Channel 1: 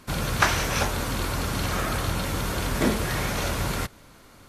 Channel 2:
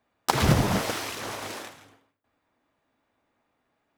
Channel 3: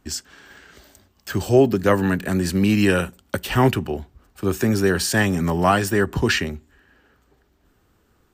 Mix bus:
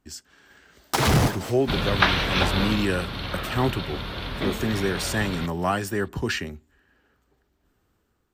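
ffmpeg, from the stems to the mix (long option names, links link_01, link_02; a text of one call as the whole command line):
ffmpeg -i stem1.wav -i stem2.wav -i stem3.wav -filter_complex "[0:a]highshelf=frequency=5200:width_type=q:width=3:gain=-12.5,adelay=1600,afade=type=out:start_time=2.63:duration=0.23:silence=0.354813[link_01];[1:a]asoftclip=type=tanh:threshold=-19.5dB,adelay=650,volume=2.5dB[link_02];[2:a]volume=-10.5dB,asplit=2[link_03][link_04];[link_04]apad=whole_len=203950[link_05];[link_02][link_05]sidechaincompress=threshold=-51dB:ratio=5:attack=44:release=119[link_06];[link_01][link_06][link_03]amix=inputs=3:normalize=0,dynaudnorm=framelen=110:gausssize=7:maxgain=3.5dB" out.wav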